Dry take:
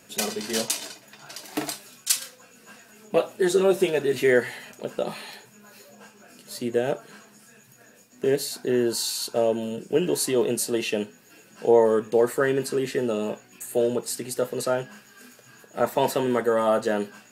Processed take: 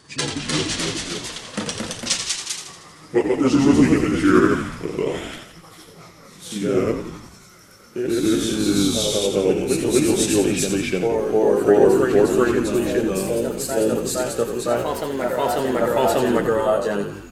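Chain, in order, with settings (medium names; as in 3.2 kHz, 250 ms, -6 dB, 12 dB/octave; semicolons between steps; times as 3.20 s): pitch bend over the whole clip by -7 st ending unshifted; frequency-shifting echo 87 ms, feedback 54%, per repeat -51 Hz, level -8 dB; ever faster or slower copies 313 ms, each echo +1 st, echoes 2; trim +3.5 dB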